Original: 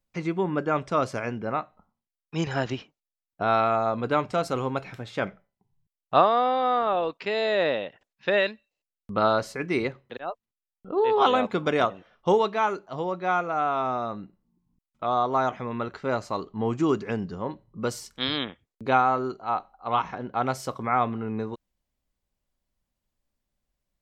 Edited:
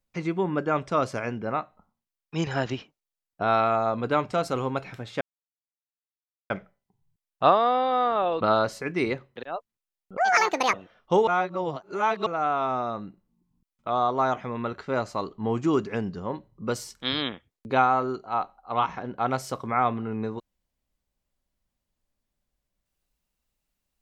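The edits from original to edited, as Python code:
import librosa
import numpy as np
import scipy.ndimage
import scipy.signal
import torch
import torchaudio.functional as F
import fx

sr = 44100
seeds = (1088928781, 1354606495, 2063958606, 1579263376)

y = fx.edit(x, sr, fx.insert_silence(at_s=5.21, length_s=1.29),
    fx.cut(start_s=7.12, length_s=2.03),
    fx.speed_span(start_s=10.91, length_s=0.98, speed=1.74),
    fx.reverse_span(start_s=12.43, length_s=0.99), tone=tone)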